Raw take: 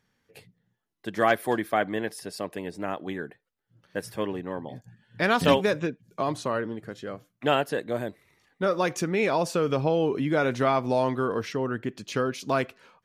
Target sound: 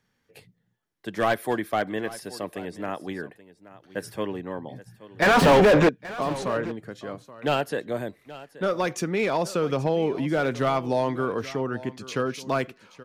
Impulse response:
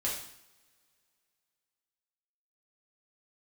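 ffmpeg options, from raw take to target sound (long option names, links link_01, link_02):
-filter_complex "[0:a]acrossover=split=170|5700[link_01][link_02][link_03];[link_02]aeval=exprs='clip(val(0),-1,0.126)':channel_layout=same[link_04];[link_01][link_04][link_03]amix=inputs=3:normalize=0,asettb=1/sr,asplit=3[link_05][link_06][link_07];[link_05]atrim=end=5.224[link_08];[link_06]atrim=start=5.22:end=5.89,asetpts=PTS-STARTPTS,afade=type=in:duration=0.004:curve=qsin,afade=type=out:start_time=0.666:duration=0.004:curve=qsin,asplit=2[link_09][link_10];[link_10]highpass=frequency=720:poles=1,volume=39dB,asoftclip=type=tanh:threshold=-7.5dB[link_11];[link_09][link_11]amix=inputs=2:normalize=0,lowpass=frequency=1100:poles=1,volume=-6dB[link_12];[link_07]atrim=start=5.886[link_13];[link_08][link_12]acrossfade=duration=0.004:curve1=hsin:curve2=qsin[link_14];[link_14][link_13]acrossfade=duration=0.004:curve1=qsin:curve2=hsin,aecho=1:1:827:0.133"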